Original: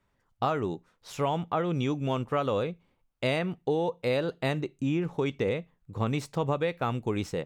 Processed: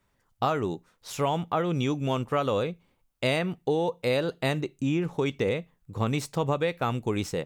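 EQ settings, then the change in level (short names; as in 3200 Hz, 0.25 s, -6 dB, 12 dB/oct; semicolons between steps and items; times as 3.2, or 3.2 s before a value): high shelf 5200 Hz +7.5 dB; +1.5 dB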